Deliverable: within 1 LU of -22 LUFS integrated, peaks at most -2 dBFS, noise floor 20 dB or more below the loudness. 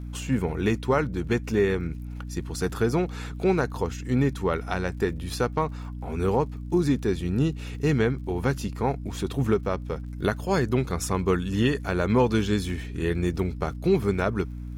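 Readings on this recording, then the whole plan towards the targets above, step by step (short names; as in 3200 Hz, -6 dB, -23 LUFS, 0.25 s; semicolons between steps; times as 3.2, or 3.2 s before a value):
ticks 51/s; hum 60 Hz; harmonics up to 300 Hz; hum level -33 dBFS; loudness -26.5 LUFS; peak -10.0 dBFS; loudness target -22.0 LUFS
-> de-click; notches 60/120/180/240/300 Hz; gain +4.5 dB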